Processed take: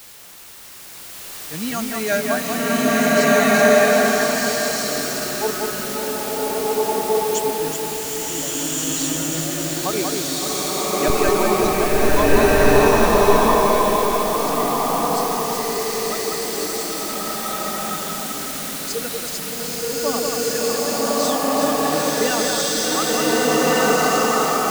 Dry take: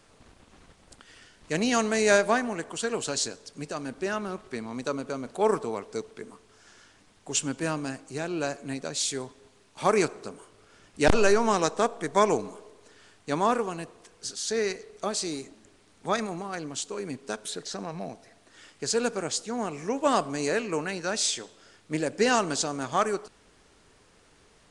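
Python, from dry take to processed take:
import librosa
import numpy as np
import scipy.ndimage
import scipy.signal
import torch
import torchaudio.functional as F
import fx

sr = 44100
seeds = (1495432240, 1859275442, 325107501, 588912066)

p1 = fx.bin_expand(x, sr, power=2.0)
p2 = fx.vibrato(p1, sr, rate_hz=12.0, depth_cents=12.0)
p3 = fx.quant_dither(p2, sr, seeds[0], bits=6, dither='triangular')
p4 = p2 + (p3 * librosa.db_to_amplitude(-3.5))
p5 = fx.echo_alternate(p4, sr, ms=188, hz=2500.0, feedback_pct=76, wet_db=-3.5)
p6 = fx.rev_bloom(p5, sr, seeds[1], attack_ms=1610, drr_db=-10.5)
y = p6 * librosa.db_to_amplitude(-2.5)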